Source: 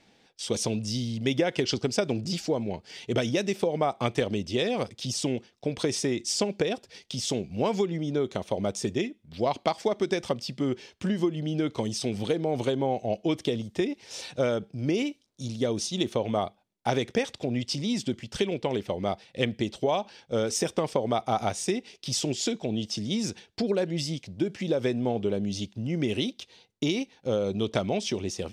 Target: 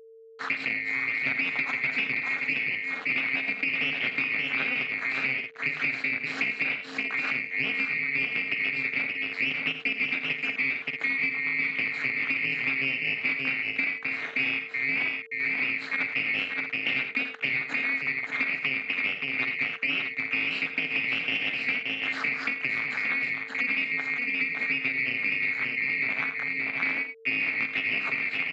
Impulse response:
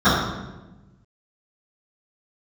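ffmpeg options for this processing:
-af "afftfilt=real='real(if(lt(b,920),b+92*(1-2*mod(floor(b/92),2)),b),0)':imag='imag(if(lt(b,920),b+92*(1-2*mod(floor(b/92),2)),b),0)':win_size=2048:overlap=0.75,acontrast=62,aeval=exprs='0.668*(cos(1*acos(clip(val(0)/0.668,-1,1)))-cos(1*PI/2))+0.0106*(cos(4*acos(clip(val(0)/0.668,-1,1)))-cos(4*PI/2))+0.237*(cos(5*acos(clip(val(0)/0.668,-1,1)))-cos(5*PI/2))+0.237*(cos(6*acos(clip(val(0)/0.668,-1,1)))-cos(6*PI/2))':c=same,aeval=exprs='val(0)*gte(abs(val(0)),0.0473)':c=same,tremolo=f=270:d=0.974,highpass=f=160:w=0.5412,highpass=f=160:w=1.3066,equalizer=f=190:t=q:w=4:g=-7,equalizer=f=350:t=q:w=4:g=-9,equalizer=f=560:t=q:w=4:g=-5,equalizer=f=940:t=q:w=4:g=-6,lowpass=f=3k:w=0.5412,lowpass=f=3k:w=1.3066,aecho=1:1:44|49|82|102|575|631:0.133|0.141|0.237|0.112|0.531|0.266,aeval=exprs='val(0)+0.00501*sin(2*PI*450*n/s)':c=same,acompressor=threshold=-26dB:ratio=3,volume=-1.5dB"

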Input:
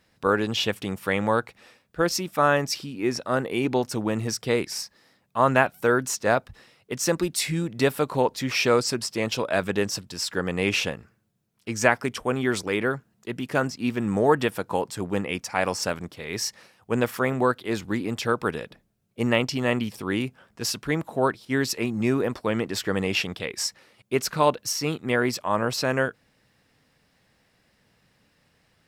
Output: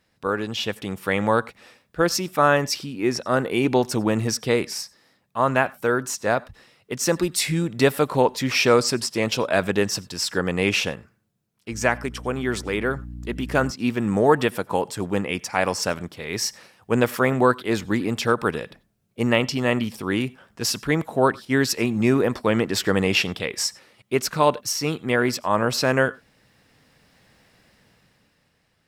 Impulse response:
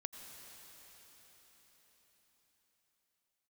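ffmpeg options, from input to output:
-filter_complex "[0:a]asettb=1/sr,asplit=3[a][b][c];[a]atrim=end=11.724[d];[b]atrim=start=11.72:end=13.71,asetpts=PTS-STARTPTS,afade=t=in:d=0.004:c=qsin,afade=t=out:st=1.986:d=0.004:c=qsin,aeval=exprs='val(0)+0.0158*(sin(2*PI*60*n/s)+sin(2*PI*2*60*n/s)/2+sin(2*PI*3*60*n/s)/3+sin(2*PI*4*60*n/s)/4+sin(2*PI*5*60*n/s)/5)':c=same[e];[c]atrim=start=13.706[f];[d][e]acrossfade=d=0.004:c1=hsin:c2=qsin[g];[g][f]acrossfade=d=0.004:c1=qsin:c2=hsin,dynaudnorm=f=120:g=17:m=11dB,asplit=2[h][i];[1:a]atrim=start_sample=2205,afade=t=out:st=0.15:d=0.01,atrim=end_sample=7056[j];[i][j]afir=irnorm=-1:irlink=0,volume=1dB[k];[h][k]amix=inputs=2:normalize=0,volume=-7.5dB"

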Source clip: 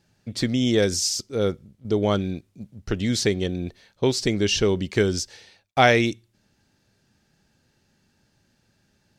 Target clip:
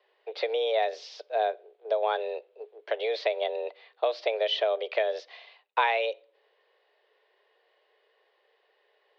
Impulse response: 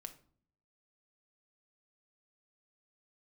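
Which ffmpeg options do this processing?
-filter_complex "[0:a]acompressor=threshold=-23dB:ratio=5,asplit=2[a][b];[1:a]atrim=start_sample=2205[c];[b][c]afir=irnorm=-1:irlink=0,volume=-9.5dB[d];[a][d]amix=inputs=2:normalize=0,highpass=f=230:t=q:w=0.5412,highpass=f=230:t=q:w=1.307,lowpass=f=3.5k:t=q:w=0.5176,lowpass=f=3.5k:t=q:w=0.7071,lowpass=f=3.5k:t=q:w=1.932,afreqshift=220"

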